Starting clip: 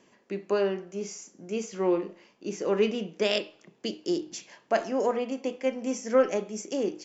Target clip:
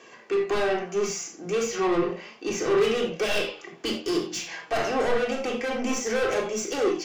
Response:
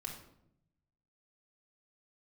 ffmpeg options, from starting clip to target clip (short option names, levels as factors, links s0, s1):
-filter_complex "[0:a]flanger=delay=1.8:depth=4.7:regen=44:speed=0.31:shape=sinusoidal,asplit=2[s0][s1];[s1]highpass=f=720:p=1,volume=28.2,asoftclip=type=tanh:threshold=0.188[s2];[s0][s2]amix=inputs=2:normalize=0,lowpass=f=4200:p=1,volume=0.501[s3];[1:a]atrim=start_sample=2205,atrim=end_sample=4410[s4];[s3][s4]afir=irnorm=-1:irlink=0"